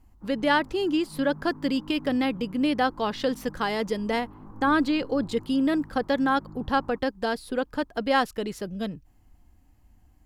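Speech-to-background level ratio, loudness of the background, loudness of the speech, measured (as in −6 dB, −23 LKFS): 20.0 dB, −46.5 LKFS, −26.5 LKFS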